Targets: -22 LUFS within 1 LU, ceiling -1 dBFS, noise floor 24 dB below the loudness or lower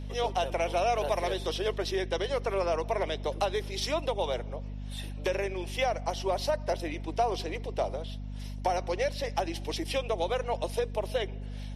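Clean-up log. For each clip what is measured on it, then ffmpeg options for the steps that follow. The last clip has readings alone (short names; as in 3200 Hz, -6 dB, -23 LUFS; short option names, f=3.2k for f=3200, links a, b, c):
hum 50 Hz; harmonics up to 250 Hz; hum level -35 dBFS; loudness -31.5 LUFS; peak -15.5 dBFS; loudness target -22.0 LUFS
-> -af "bandreject=f=50:t=h:w=6,bandreject=f=100:t=h:w=6,bandreject=f=150:t=h:w=6,bandreject=f=200:t=h:w=6,bandreject=f=250:t=h:w=6"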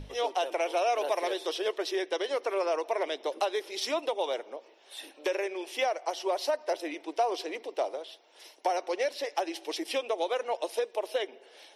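hum none; loudness -31.5 LUFS; peak -16.5 dBFS; loudness target -22.0 LUFS
-> -af "volume=9.5dB"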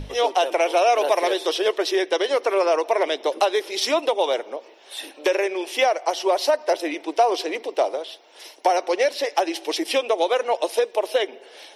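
loudness -22.0 LUFS; peak -7.0 dBFS; noise floor -48 dBFS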